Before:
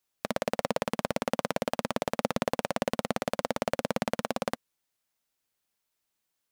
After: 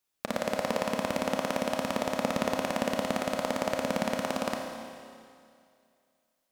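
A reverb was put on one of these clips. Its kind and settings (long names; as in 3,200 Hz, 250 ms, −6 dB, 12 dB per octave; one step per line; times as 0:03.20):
four-comb reverb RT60 2.3 s, combs from 27 ms, DRR 2 dB
level −1 dB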